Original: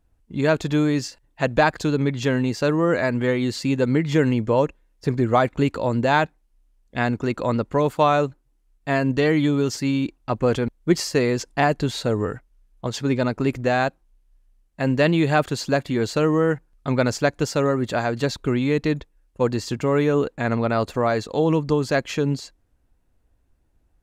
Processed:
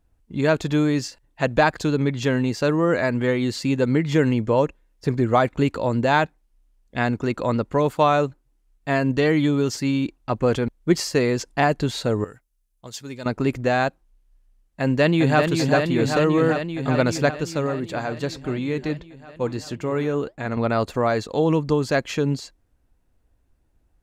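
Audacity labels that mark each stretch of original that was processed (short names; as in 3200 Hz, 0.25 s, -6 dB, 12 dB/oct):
12.240000	13.260000	pre-emphasis coefficient 0.8
14.810000	15.420000	echo throw 0.39 s, feedback 80%, level -4.5 dB
17.310000	20.570000	flange 1.6 Hz, delay 1.9 ms, depth 5.7 ms, regen -80%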